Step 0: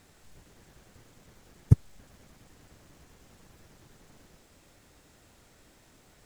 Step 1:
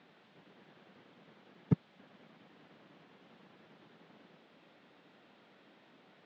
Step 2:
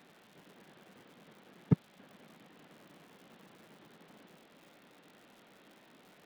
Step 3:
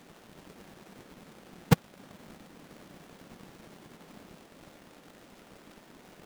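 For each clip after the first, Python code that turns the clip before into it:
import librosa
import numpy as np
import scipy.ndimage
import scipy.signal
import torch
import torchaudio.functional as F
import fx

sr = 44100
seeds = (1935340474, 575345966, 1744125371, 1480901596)

y1 = scipy.signal.sosfilt(scipy.signal.cheby1(3, 1.0, [180.0, 3500.0], 'bandpass', fs=sr, output='sos'), x)
y2 = fx.dmg_crackle(y1, sr, seeds[0], per_s=180.0, level_db=-52.0)
y2 = y2 * 10.0 ** (2.0 / 20.0)
y3 = fx.halfwave_hold(y2, sr)
y3 = y3 * 10.0 ** (1.0 / 20.0)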